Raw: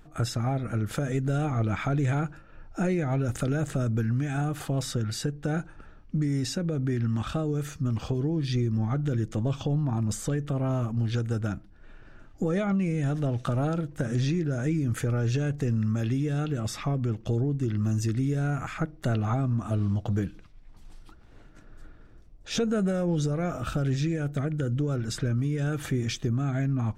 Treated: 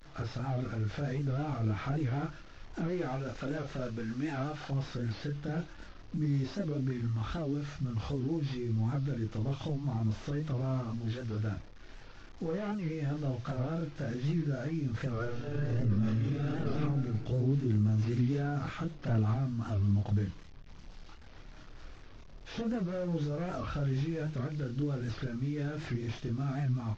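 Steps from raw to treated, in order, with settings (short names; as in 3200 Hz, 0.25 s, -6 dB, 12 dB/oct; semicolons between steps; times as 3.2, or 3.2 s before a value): delta modulation 32 kbps, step -45 dBFS; 2.87–4.71 bell 100 Hz -11.5 dB 1.4 oct; 15.12–16.52 reverb throw, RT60 1.6 s, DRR -11.5 dB; limiter -24 dBFS, peak gain reduction 20.5 dB; chorus voices 4, 0.62 Hz, delay 29 ms, depth 1.9 ms; record warp 78 rpm, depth 160 cents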